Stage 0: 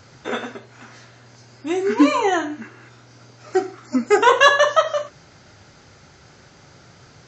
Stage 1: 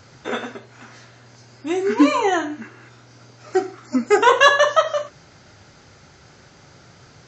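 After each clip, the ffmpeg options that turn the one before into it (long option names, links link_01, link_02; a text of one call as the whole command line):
ffmpeg -i in.wav -af anull out.wav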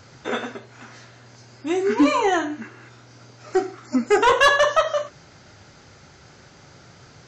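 ffmpeg -i in.wav -af "asoftclip=type=tanh:threshold=-8.5dB" out.wav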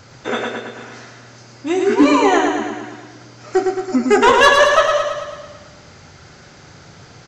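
ffmpeg -i in.wav -af "aecho=1:1:110|220|330|440|550|660|770|880:0.596|0.351|0.207|0.122|0.0722|0.0426|0.0251|0.0148,volume=4dB" out.wav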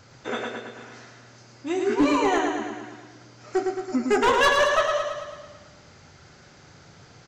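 ffmpeg -i in.wav -af "aeval=exprs='clip(val(0),-1,0.422)':channel_layout=same,volume=-8dB" out.wav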